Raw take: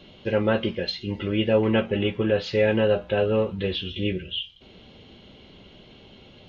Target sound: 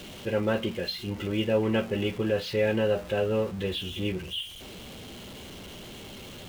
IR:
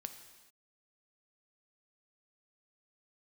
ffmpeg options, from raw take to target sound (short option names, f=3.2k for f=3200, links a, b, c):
-af "aeval=exprs='val(0)+0.5*0.0188*sgn(val(0))':c=same,volume=-5dB"